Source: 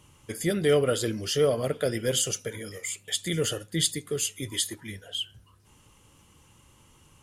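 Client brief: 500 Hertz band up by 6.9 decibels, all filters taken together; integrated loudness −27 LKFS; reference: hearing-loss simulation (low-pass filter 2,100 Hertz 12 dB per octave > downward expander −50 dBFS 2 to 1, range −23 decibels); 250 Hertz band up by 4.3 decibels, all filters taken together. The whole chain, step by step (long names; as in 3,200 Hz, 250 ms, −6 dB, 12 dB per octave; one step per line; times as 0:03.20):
low-pass filter 2,100 Hz 12 dB per octave
parametric band 250 Hz +3.5 dB
parametric band 500 Hz +7 dB
downward expander −50 dBFS 2 to 1, range −23 dB
level −4 dB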